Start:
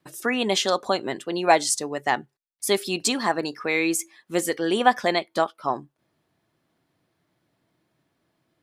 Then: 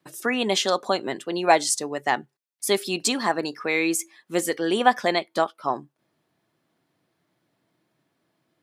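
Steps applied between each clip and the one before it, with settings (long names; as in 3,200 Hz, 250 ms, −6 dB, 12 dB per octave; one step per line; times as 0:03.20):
high-pass filter 120 Hz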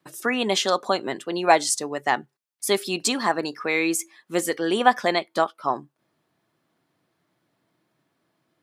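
parametric band 1,200 Hz +2.5 dB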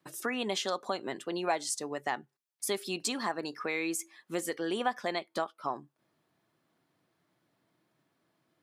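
downward compressor 2 to 1, threshold −31 dBFS, peak gain reduction 11.5 dB
level −3.5 dB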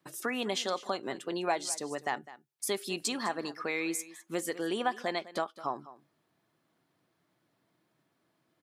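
single-tap delay 205 ms −17 dB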